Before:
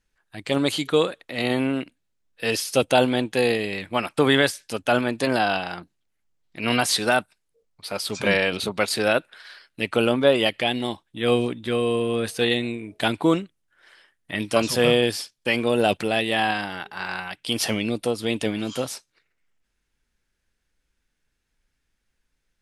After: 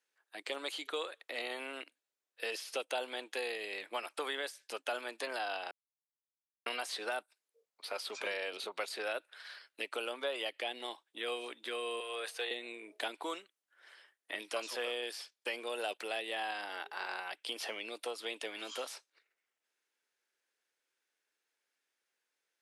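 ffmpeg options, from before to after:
ffmpeg -i in.wav -filter_complex "[0:a]asettb=1/sr,asplit=3[link_01][link_02][link_03];[link_01]atrim=end=12.004[link_04];[link_02]atrim=start=12:end=12.51,asetpts=PTS-STARTPTS,afade=type=in:duration=0.004:curve=qsin,afade=type=out:start_time=0.506:duration=0.004:curve=qsin,highpass=630[link_05];[link_03]atrim=start=12.506[link_06];[link_04][link_05]acrossfade=duration=0.004:curve1=hsin:curve2=qsin[link_07];[link_07][link_06]acrossfade=duration=0.004:curve1=qsin:curve2=hsin,asplit=3[link_08][link_09][link_10];[link_08]atrim=end=5.71,asetpts=PTS-STARTPTS,afade=type=out:start_time=5.706:duration=0.004:curve=hsin[link_11];[link_09]atrim=start=5.71:end=6.66,asetpts=PTS-STARTPTS,volume=0[link_12];[link_10]atrim=start=6.66,asetpts=PTS-STARTPTS,afade=type=in:duration=0.004:curve=hsin[link_13];[link_11][link_12][link_13]concat=n=3:v=0:a=1,acrossover=split=830|3800[link_14][link_15][link_16];[link_14]acompressor=threshold=-34dB:ratio=4[link_17];[link_15]acompressor=threshold=-35dB:ratio=4[link_18];[link_16]acompressor=threshold=-44dB:ratio=4[link_19];[link_17][link_18][link_19]amix=inputs=3:normalize=0,highpass=frequency=380:width=0.5412,highpass=frequency=380:width=1.3066,volume=-5.5dB" out.wav

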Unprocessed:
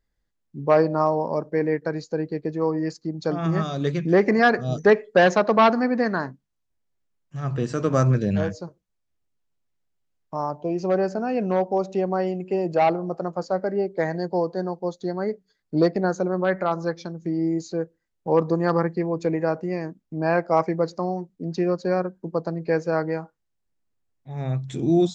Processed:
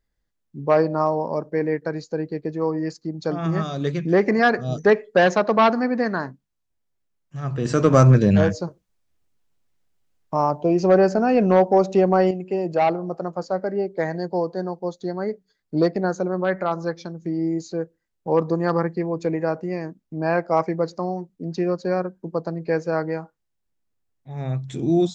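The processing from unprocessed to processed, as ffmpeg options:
ffmpeg -i in.wav -filter_complex "[0:a]asettb=1/sr,asplit=3[link_01][link_02][link_03];[link_01]atrim=end=7.654[link_04];[link_02]atrim=start=7.65:end=12.31,asetpts=PTS-STARTPTS,afade=type=in:duration=0.004:curve=qsin,afade=type=out:start_time=4.656:duration=0.004:curve=qsin,acontrast=83[link_05];[link_03]atrim=start=12.306[link_06];[link_04][link_05]acrossfade=duration=0.004:curve1=hsin:curve2=qsin[link_07];[link_07][link_06]acrossfade=duration=0.004:curve1=qsin:curve2=hsin" out.wav

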